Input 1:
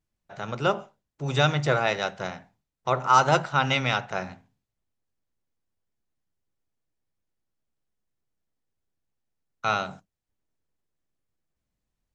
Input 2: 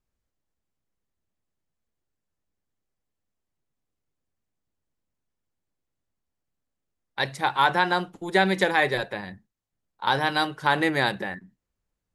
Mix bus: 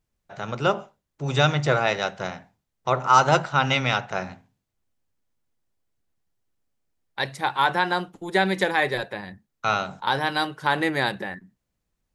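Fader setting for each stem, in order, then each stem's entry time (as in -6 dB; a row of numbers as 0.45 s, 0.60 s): +2.0 dB, -0.5 dB; 0.00 s, 0.00 s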